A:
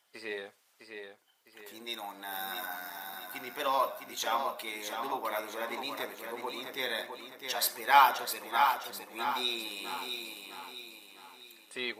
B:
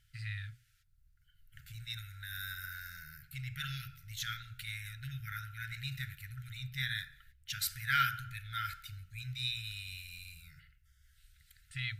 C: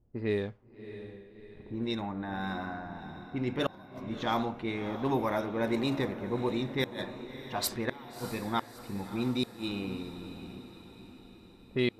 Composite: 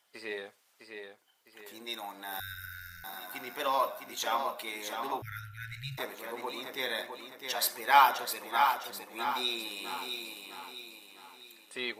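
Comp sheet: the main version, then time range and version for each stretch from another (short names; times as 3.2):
A
2.4–3.04 from B
5.22–5.98 from B
not used: C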